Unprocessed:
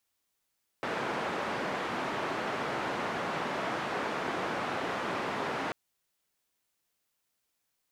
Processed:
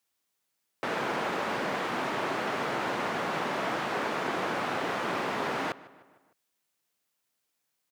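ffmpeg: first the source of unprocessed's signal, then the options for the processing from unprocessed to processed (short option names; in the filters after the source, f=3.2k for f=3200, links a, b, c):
-f lavfi -i "anoisesrc=c=white:d=4.89:r=44100:seed=1,highpass=f=170,lowpass=f=1300,volume=-16.3dB"
-filter_complex "[0:a]highpass=100,asplit=2[a][b];[b]aeval=exprs='val(0)*gte(abs(val(0)),0.0119)':c=same,volume=-9.5dB[c];[a][c]amix=inputs=2:normalize=0,asplit=2[d][e];[e]adelay=152,lowpass=f=3.4k:p=1,volume=-19dB,asplit=2[f][g];[g]adelay=152,lowpass=f=3.4k:p=1,volume=0.54,asplit=2[h][i];[i]adelay=152,lowpass=f=3.4k:p=1,volume=0.54,asplit=2[j][k];[k]adelay=152,lowpass=f=3.4k:p=1,volume=0.54[l];[d][f][h][j][l]amix=inputs=5:normalize=0"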